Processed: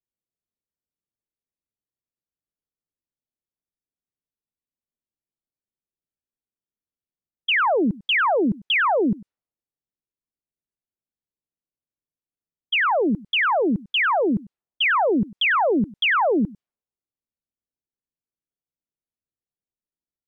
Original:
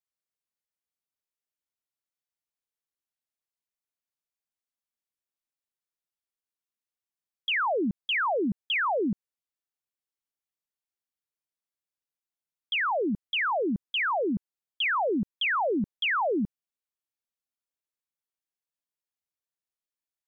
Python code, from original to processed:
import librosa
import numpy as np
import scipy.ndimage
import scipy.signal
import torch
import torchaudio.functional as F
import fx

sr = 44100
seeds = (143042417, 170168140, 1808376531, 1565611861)

y = fx.env_lowpass(x, sr, base_hz=380.0, full_db=-29.5)
y = y + 10.0 ** (-21.0 / 20.0) * np.pad(y, (int(98 * sr / 1000.0), 0))[:len(y)]
y = F.gain(torch.from_numpy(y), 7.0).numpy()